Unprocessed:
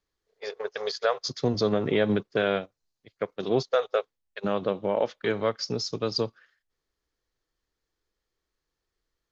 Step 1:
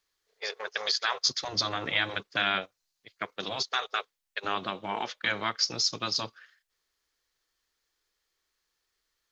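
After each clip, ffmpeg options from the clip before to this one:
ffmpeg -i in.wav -af "afftfilt=real='re*lt(hypot(re,im),0.224)':imag='im*lt(hypot(re,im),0.224)':win_size=1024:overlap=0.75,tiltshelf=frequency=720:gain=-8" out.wav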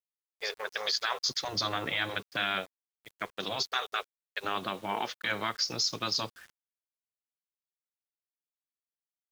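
ffmpeg -i in.wav -af "alimiter=limit=-18.5dB:level=0:latency=1:release=21,acrusher=bits=8:mix=0:aa=0.000001" out.wav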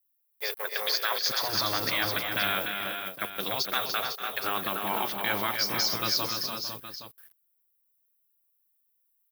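ffmpeg -i in.wav -filter_complex "[0:a]aexciter=amount=6.6:drive=8.8:freq=10000,asplit=2[link_01][link_02];[link_02]aecho=0:1:258|293|449|502|819:0.168|0.501|0.211|0.376|0.224[link_03];[link_01][link_03]amix=inputs=2:normalize=0,volume=1.5dB" out.wav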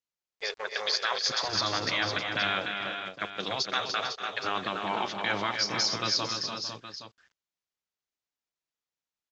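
ffmpeg -i in.wav -af "aresample=16000,aresample=44100" out.wav

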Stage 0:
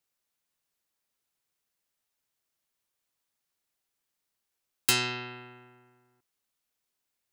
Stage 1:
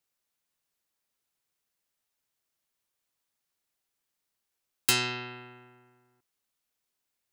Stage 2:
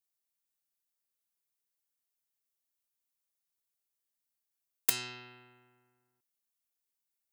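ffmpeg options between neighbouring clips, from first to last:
ffmpeg -i in.wav -af anull out.wav
ffmpeg -i in.wav -af "crystalizer=i=1.5:c=0,aeval=exprs='1.12*(cos(1*acos(clip(val(0)/1.12,-1,1)))-cos(1*PI/2))+0.398*(cos(3*acos(clip(val(0)/1.12,-1,1)))-cos(3*PI/2))+0.0562*(cos(7*acos(clip(val(0)/1.12,-1,1)))-cos(7*PI/2))':channel_layout=same,volume=-5dB" out.wav

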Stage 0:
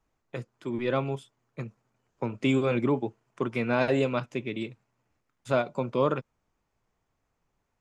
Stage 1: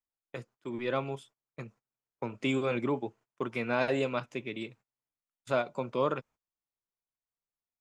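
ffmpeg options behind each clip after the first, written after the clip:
ffmpeg -i in.wav -af "agate=range=-21dB:threshold=-50dB:ratio=16:detection=peak,lowshelf=frequency=330:gain=-6.5,volume=-2dB" out.wav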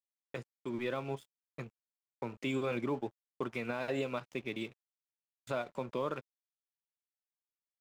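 ffmpeg -i in.wav -af "alimiter=level_in=1dB:limit=-24dB:level=0:latency=1:release=143,volume=-1dB,aeval=exprs='sgn(val(0))*max(abs(val(0))-0.00168,0)':channel_layout=same" out.wav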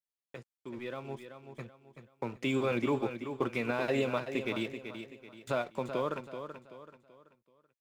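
ffmpeg -i in.wav -filter_complex "[0:a]dynaudnorm=framelen=220:gausssize=17:maxgain=9.5dB,asplit=2[link_01][link_02];[link_02]aecho=0:1:382|764|1146|1528:0.355|0.131|0.0486|0.018[link_03];[link_01][link_03]amix=inputs=2:normalize=0,volume=-5dB" out.wav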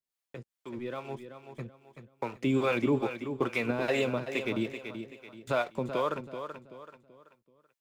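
ffmpeg -i in.wav -filter_complex "[0:a]acrossover=split=470[link_01][link_02];[link_01]aeval=exprs='val(0)*(1-0.7/2+0.7/2*cos(2*PI*2.4*n/s))':channel_layout=same[link_03];[link_02]aeval=exprs='val(0)*(1-0.7/2-0.7/2*cos(2*PI*2.4*n/s))':channel_layout=same[link_04];[link_03][link_04]amix=inputs=2:normalize=0,volume=6dB" out.wav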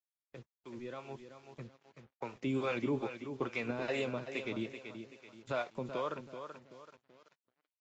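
ffmpeg -i in.wav -af "acrusher=bits=8:mix=0:aa=0.5,volume=-7dB" -ar 16000 -c:a libvorbis -b:a 48k out.ogg

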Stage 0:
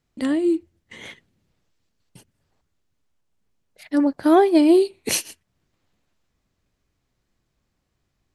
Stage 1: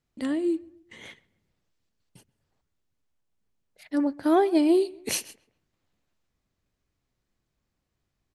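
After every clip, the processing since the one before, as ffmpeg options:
ffmpeg -i in.wav -filter_complex "[0:a]asplit=2[link_01][link_02];[link_02]adelay=134,lowpass=frequency=2400:poles=1,volume=-22.5dB,asplit=2[link_03][link_04];[link_04]adelay=134,lowpass=frequency=2400:poles=1,volume=0.39,asplit=2[link_05][link_06];[link_06]adelay=134,lowpass=frequency=2400:poles=1,volume=0.39[link_07];[link_01][link_03][link_05][link_07]amix=inputs=4:normalize=0,volume=-6dB" out.wav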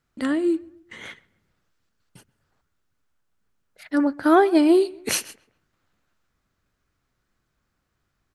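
ffmpeg -i in.wav -af "equalizer=frequency=1400:width=2.1:gain=9.5,volume=4dB" out.wav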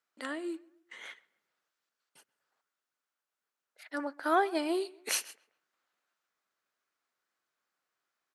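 ffmpeg -i in.wav -af "highpass=560,volume=-7dB" out.wav

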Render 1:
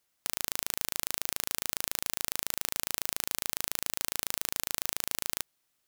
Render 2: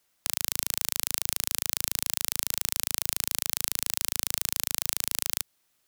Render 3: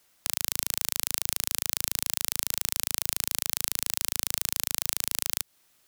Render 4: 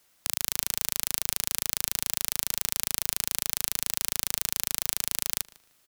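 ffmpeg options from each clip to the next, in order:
ffmpeg -i in.wav -filter_complex "[0:a]acrossover=split=150|3000[link_01][link_02][link_03];[link_02]acompressor=threshold=-42dB:ratio=4[link_04];[link_01][link_04][link_03]amix=inputs=3:normalize=0,volume=5dB" out.wav
ffmpeg -i in.wav -af "alimiter=limit=-8dB:level=0:latency=1:release=167,volume=6.5dB" out.wav
ffmpeg -i in.wav -filter_complex "[0:a]asplit=2[link_01][link_02];[link_02]adelay=152,lowpass=frequency=3900:poles=1,volume=-18.5dB,asplit=2[link_03][link_04];[link_04]adelay=152,lowpass=frequency=3900:poles=1,volume=0.25[link_05];[link_01][link_03][link_05]amix=inputs=3:normalize=0" out.wav

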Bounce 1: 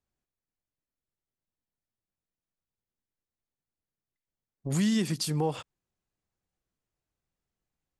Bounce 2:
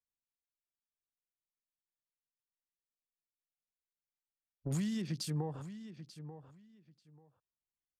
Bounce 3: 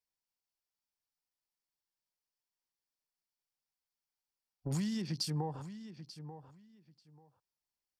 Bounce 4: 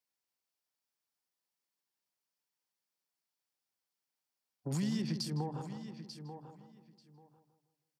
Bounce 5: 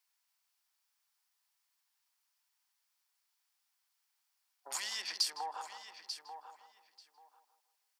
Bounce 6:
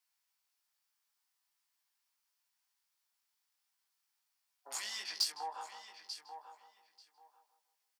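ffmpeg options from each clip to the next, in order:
ffmpeg -i in.wav -filter_complex "[0:a]afwtdn=0.00501,acrossover=split=140[link_01][link_02];[link_02]acompressor=threshold=-35dB:ratio=6[link_03];[link_01][link_03]amix=inputs=2:normalize=0,asplit=2[link_04][link_05];[link_05]adelay=888,lowpass=frequency=4200:poles=1,volume=-12dB,asplit=2[link_06][link_07];[link_07]adelay=888,lowpass=frequency=4200:poles=1,volume=0.19[link_08];[link_04][link_06][link_08]amix=inputs=3:normalize=0,volume=-2.5dB" out.wav
ffmpeg -i in.wav -af "superequalizer=9b=1.78:14b=2" out.wav
ffmpeg -i in.wav -filter_complex "[0:a]acrossover=split=270[link_01][link_02];[link_02]acompressor=threshold=-43dB:ratio=2[link_03];[link_01][link_03]amix=inputs=2:normalize=0,highpass=140,asplit=2[link_04][link_05];[link_05]adelay=159,lowpass=frequency=1200:poles=1,volume=-6.5dB,asplit=2[link_06][link_07];[link_07]adelay=159,lowpass=frequency=1200:poles=1,volume=0.46,asplit=2[link_08][link_09];[link_09]adelay=159,lowpass=frequency=1200:poles=1,volume=0.46,asplit=2[link_10][link_11];[link_11]adelay=159,lowpass=frequency=1200:poles=1,volume=0.46,asplit=2[link_12][link_13];[link_13]adelay=159,lowpass=frequency=1200:poles=1,volume=0.46[link_14];[link_04][link_06][link_08][link_10][link_12][link_14]amix=inputs=6:normalize=0,volume=2dB" out.wav
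ffmpeg -i in.wav -af "highpass=frequency=830:width=0.5412,highpass=frequency=830:width=1.3066,volume=8.5dB" out.wav
ffmpeg -i in.wav -filter_complex "[0:a]asplit=2[link_01][link_02];[link_02]acrusher=bits=3:mix=0:aa=0.5,volume=-8.5dB[link_03];[link_01][link_03]amix=inputs=2:normalize=0,asplit=2[link_04][link_05];[link_05]adelay=19,volume=-3dB[link_06];[link_04][link_06]amix=inputs=2:normalize=0,volume=-4dB" out.wav

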